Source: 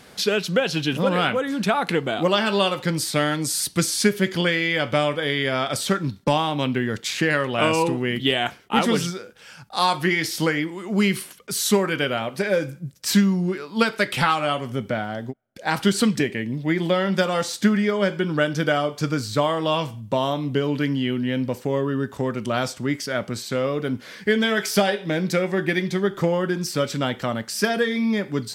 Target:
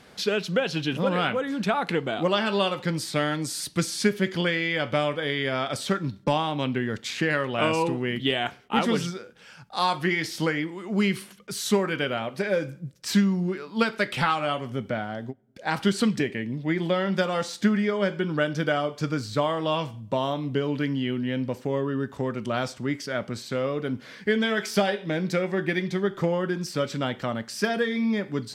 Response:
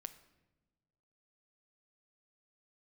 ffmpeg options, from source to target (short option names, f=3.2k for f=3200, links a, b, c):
-filter_complex "[0:a]highshelf=f=8.1k:g=-10,asplit=2[a][b];[1:a]atrim=start_sample=2205,asetrate=61740,aresample=44100[c];[b][c]afir=irnorm=-1:irlink=0,volume=-6.5dB[d];[a][d]amix=inputs=2:normalize=0,volume=-5dB"